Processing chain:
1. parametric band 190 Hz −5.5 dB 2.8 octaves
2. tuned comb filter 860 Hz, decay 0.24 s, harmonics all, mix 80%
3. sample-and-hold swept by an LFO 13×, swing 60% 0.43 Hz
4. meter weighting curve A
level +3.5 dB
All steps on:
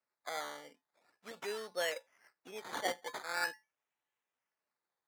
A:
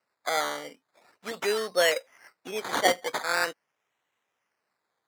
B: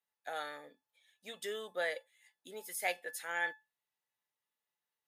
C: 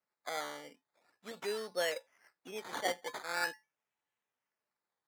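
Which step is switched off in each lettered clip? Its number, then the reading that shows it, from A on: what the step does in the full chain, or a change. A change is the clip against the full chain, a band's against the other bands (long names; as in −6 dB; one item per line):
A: 2, 2 kHz band −2.0 dB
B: 3, 2 kHz band +3.0 dB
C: 1, change in momentary loudness spread +2 LU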